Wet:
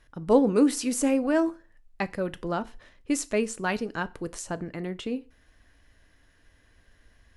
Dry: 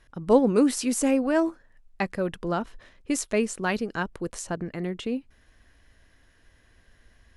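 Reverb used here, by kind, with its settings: FDN reverb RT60 0.34 s, low-frequency decay 1×, high-frequency decay 0.95×, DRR 13.5 dB; gain -1.5 dB

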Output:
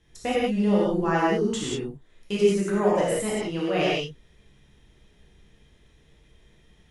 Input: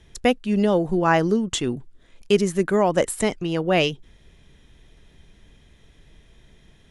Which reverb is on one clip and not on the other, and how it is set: non-linear reverb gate 0.21 s flat, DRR -7.5 dB; gain -11.5 dB

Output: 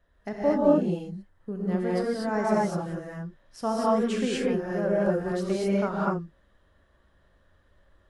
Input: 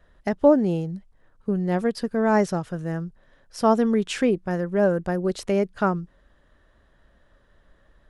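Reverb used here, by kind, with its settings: non-linear reverb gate 0.27 s rising, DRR -6 dB; gain -10 dB

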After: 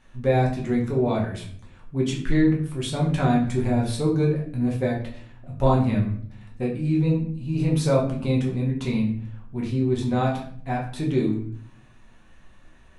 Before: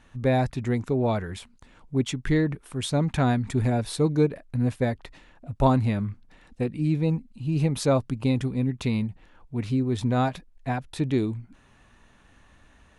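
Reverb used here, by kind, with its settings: shoebox room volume 79 m³, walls mixed, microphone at 1 m; gain -4 dB

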